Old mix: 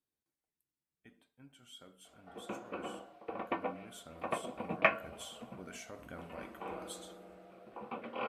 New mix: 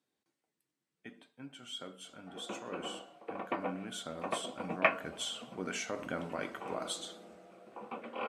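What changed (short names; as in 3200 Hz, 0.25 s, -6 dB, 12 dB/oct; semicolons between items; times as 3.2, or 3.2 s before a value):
speech +11.0 dB; master: add BPF 170–7400 Hz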